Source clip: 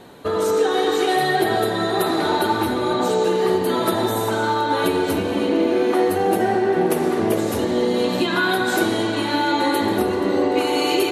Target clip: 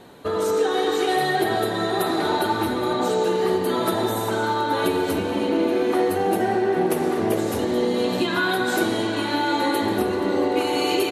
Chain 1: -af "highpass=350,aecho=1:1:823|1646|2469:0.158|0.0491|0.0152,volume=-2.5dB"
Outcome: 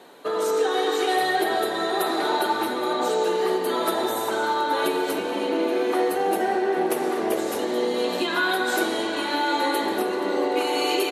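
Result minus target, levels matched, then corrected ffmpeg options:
250 Hz band −3.0 dB
-af "aecho=1:1:823|1646|2469:0.158|0.0491|0.0152,volume=-2.5dB"

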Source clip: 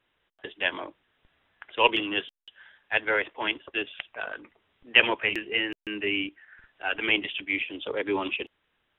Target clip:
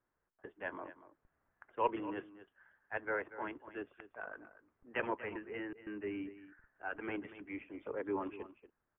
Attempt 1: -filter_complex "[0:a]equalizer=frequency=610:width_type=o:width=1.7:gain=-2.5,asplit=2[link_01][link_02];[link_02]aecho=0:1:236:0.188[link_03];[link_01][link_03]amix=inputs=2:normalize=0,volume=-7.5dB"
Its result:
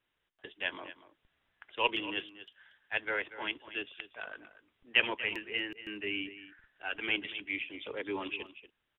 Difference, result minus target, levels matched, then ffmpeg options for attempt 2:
2,000 Hz band +3.0 dB
-filter_complex "[0:a]lowpass=frequency=1500:width=0.5412,lowpass=frequency=1500:width=1.3066,equalizer=frequency=610:width_type=o:width=1.7:gain=-2.5,asplit=2[link_01][link_02];[link_02]aecho=0:1:236:0.188[link_03];[link_01][link_03]amix=inputs=2:normalize=0,volume=-7.5dB"

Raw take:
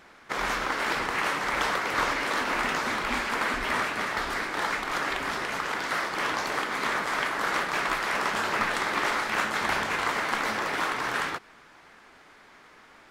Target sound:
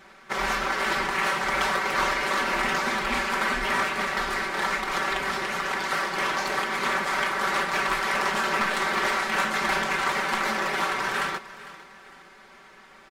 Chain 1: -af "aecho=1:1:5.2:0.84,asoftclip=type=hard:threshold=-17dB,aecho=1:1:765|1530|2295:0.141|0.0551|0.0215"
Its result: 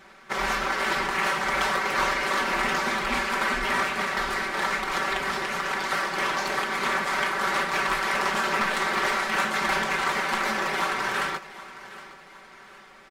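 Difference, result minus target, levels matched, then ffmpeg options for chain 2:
echo 312 ms late
-af "aecho=1:1:5.2:0.84,asoftclip=type=hard:threshold=-17dB,aecho=1:1:453|906|1359:0.141|0.0551|0.0215"

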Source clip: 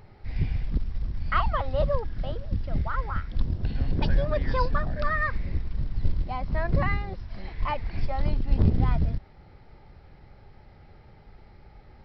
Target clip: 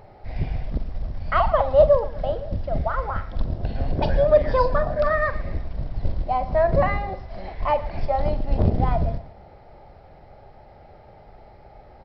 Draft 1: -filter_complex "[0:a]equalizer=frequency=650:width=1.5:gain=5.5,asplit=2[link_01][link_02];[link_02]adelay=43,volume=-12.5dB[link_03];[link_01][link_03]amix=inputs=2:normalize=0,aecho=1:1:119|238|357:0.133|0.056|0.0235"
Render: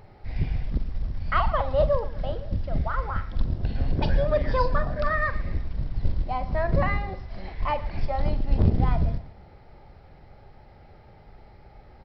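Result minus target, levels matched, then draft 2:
500 Hz band −4.0 dB
-filter_complex "[0:a]equalizer=frequency=650:width=1.5:gain=15,asplit=2[link_01][link_02];[link_02]adelay=43,volume=-12.5dB[link_03];[link_01][link_03]amix=inputs=2:normalize=0,aecho=1:1:119|238|357:0.133|0.056|0.0235"

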